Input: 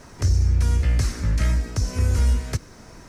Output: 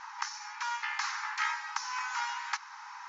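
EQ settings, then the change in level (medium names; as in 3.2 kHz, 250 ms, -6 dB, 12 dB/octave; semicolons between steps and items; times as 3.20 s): brick-wall FIR band-pass 790–7400 Hz; distance through air 97 m; tilt shelf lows +8 dB, about 1.1 kHz; +8.5 dB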